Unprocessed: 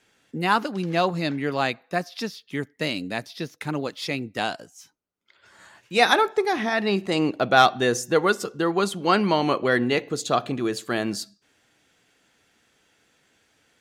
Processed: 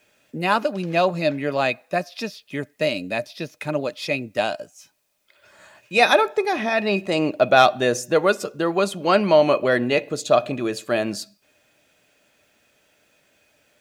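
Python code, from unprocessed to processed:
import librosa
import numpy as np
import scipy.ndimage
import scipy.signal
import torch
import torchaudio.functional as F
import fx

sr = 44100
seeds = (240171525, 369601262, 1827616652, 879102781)

y = fx.quant_dither(x, sr, seeds[0], bits=12, dither='triangular')
y = fx.small_body(y, sr, hz=(600.0, 2500.0), ring_ms=75, db=16)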